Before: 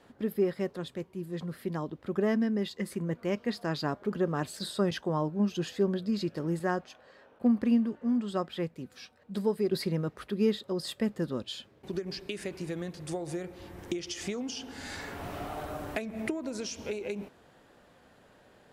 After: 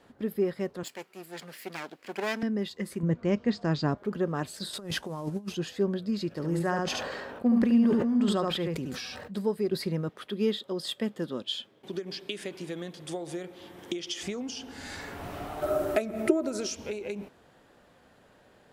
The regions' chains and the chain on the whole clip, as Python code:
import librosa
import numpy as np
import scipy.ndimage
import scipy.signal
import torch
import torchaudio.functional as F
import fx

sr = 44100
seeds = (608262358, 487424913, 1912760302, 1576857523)

y = fx.chain(x, sr, fx.lower_of_two(delay_ms=0.41),
    fx.highpass(hz=220.0, slope=12),
    fx.tilt_shelf(db=-8.5, hz=660.0), at=(0.83, 2.43))
y = fx.chain(y, sr, fx.steep_lowpass(hz=8000.0, slope=48),
    fx.low_shelf(hz=290.0, db=9.5), at=(3.03, 3.98))
y = fx.chain(y, sr, fx.cvsd(bps=64000),
    fx.over_compress(threshold_db=-33.0, ratio=-0.5), at=(4.73, 5.55))
y = fx.chain(y, sr, fx.echo_single(ms=73, db=-5.5),
    fx.sustainer(db_per_s=24.0), at=(6.29, 9.32))
y = fx.chain(y, sr, fx.highpass(hz=180.0, slope=12),
    fx.peak_eq(hz=3300.0, db=9.5, octaves=0.27), at=(10.09, 14.23))
y = fx.chain(y, sr, fx.high_shelf(hz=6500.0, db=8.5),
    fx.small_body(hz=(370.0, 600.0, 1300.0), ring_ms=70, db=17), at=(15.62, 16.75))